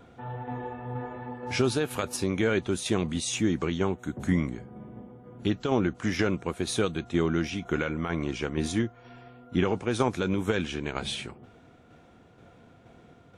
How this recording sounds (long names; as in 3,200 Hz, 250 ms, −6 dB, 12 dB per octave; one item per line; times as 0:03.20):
tremolo saw down 2.1 Hz, depth 40%